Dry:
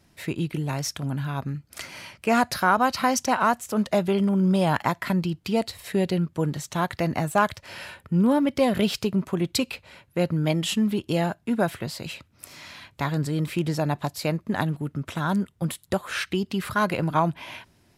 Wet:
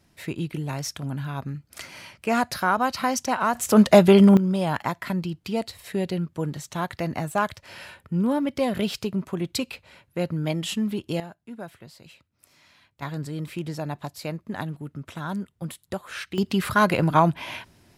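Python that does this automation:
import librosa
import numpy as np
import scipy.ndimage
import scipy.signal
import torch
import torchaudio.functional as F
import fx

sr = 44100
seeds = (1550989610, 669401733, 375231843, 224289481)

y = fx.gain(x, sr, db=fx.steps((0.0, -2.0), (3.55, 9.0), (4.37, -3.0), (11.2, -14.5), (13.02, -6.0), (16.38, 4.0)))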